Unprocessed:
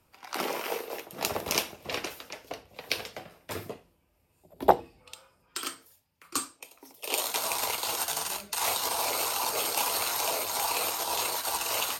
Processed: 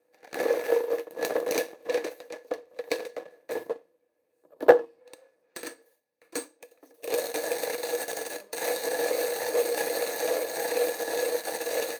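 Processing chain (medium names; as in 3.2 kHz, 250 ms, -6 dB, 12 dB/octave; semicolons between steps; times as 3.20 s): comb filter that takes the minimum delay 0.48 ms; bass shelf 410 Hz -10.5 dB; small resonant body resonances 310/480/1700 Hz, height 18 dB, ringing for 65 ms; waveshaping leveller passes 1; high-pass 140 Hz 12 dB/octave; high-order bell 660 Hz +11 dB; trim -8.5 dB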